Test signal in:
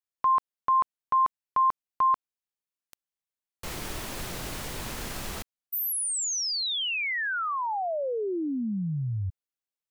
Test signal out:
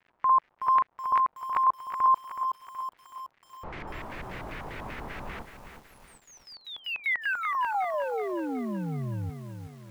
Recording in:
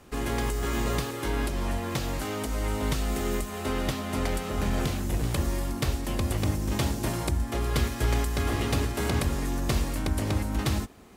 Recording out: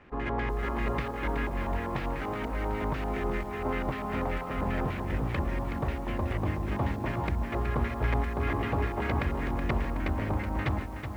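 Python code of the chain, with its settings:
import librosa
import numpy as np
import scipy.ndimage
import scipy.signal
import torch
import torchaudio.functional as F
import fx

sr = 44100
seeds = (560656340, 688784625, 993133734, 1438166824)

y = fx.dmg_crackle(x, sr, seeds[0], per_s=320.0, level_db=-45.0)
y = fx.filter_lfo_lowpass(y, sr, shape='square', hz=5.1, low_hz=970.0, high_hz=2100.0, q=2.2)
y = fx.echo_crushed(y, sr, ms=373, feedback_pct=55, bits=8, wet_db=-8.0)
y = F.gain(torch.from_numpy(y), -3.5).numpy()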